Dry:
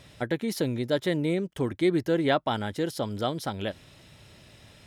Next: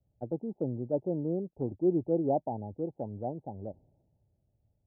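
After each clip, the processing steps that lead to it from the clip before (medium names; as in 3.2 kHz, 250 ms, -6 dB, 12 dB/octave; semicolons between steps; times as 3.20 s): steep low-pass 870 Hz 96 dB/octave; three bands expanded up and down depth 70%; trim -5 dB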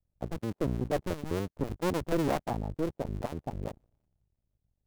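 cycle switcher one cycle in 2, muted; bass shelf 89 Hz +10.5 dB; waveshaping leveller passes 2; trim -3 dB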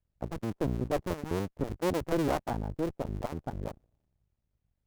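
sliding maximum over 9 samples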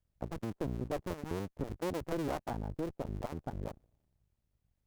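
compression 2:1, threshold -37 dBFS, peak gain reduction 7.5 dB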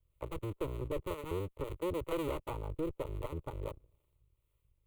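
saturation -29 dBFS, distortion -19 dB; static phaser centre 1.1 kHz, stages 8; harmonic tremolo 2.1 Hz, depth 50%, crossover 430 Hz; trim +7.5 dB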